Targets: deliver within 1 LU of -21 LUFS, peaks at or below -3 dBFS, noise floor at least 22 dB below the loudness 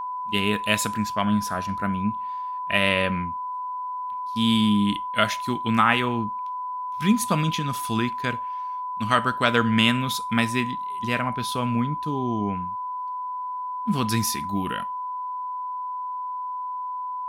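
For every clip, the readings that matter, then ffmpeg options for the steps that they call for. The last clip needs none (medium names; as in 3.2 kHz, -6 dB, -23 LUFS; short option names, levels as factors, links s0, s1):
steady tone 1 kHz; tone level -28 dBFS; loudness -25.0 LUFS; peak level -3.5 dBFS; loudness target -21.0 LUFS
-> -af "bandreject=f=1000:w=30"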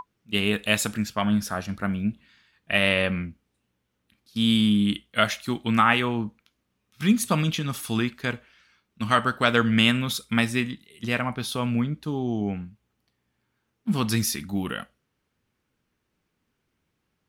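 steady tone not found; loudness -24.5 LUFS; peak level -4.5 dBFS; loudness target -21.0 LUFS
-> -af "volume=1.5,alimiter=limit=0.708:level=0:latency=1"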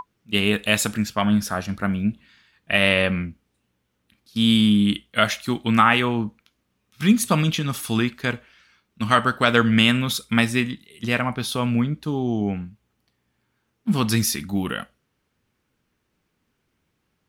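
loudness -21.5 LUFS; peak level -3.0 dBFS; noise floor -74 dBFS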